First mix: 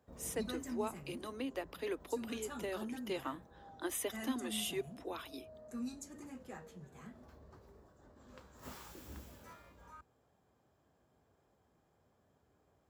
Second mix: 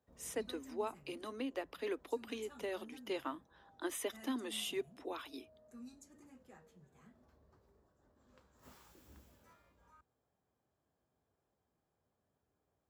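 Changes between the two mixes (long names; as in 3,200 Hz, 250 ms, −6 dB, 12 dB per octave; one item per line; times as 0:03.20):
speech: add high-shelf EQ 9,900 Hz −8.5 dB
background −10.5 dB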